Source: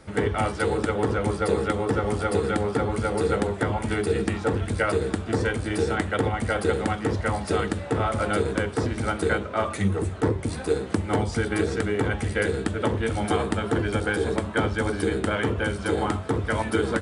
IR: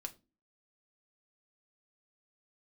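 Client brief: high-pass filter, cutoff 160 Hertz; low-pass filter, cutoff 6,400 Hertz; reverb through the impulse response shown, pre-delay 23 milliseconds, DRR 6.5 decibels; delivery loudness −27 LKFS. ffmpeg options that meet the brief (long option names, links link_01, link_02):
-filter_complex "[0:a]highpass=160,lowpass=6400,asplit=2[link_01][link_02];[1:a]atrim=start_sample=2205,adelay=23[link_03];[link_02][link_03]afir=irnorm=-1:irlink=0,volume=-3.5dB[link_04];[link_01][link_04]amix=inputs=2:normalize=0,volume=-1dB"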